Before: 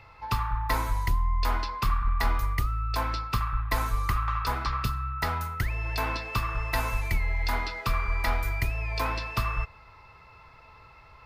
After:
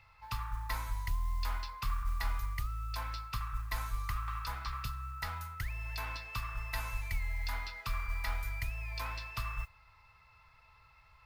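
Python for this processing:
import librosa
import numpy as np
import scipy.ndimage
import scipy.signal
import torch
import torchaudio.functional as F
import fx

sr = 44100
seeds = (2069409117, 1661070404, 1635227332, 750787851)

y = fx.peak_eq(x, sr, hz=340.0, db=-15.0, octaves=2.0)
y = fx.mod_noise(y, sr, seeds[0], snr_db=28)
y = F.gain(torch.from_numpy(y), -7.5).numpy()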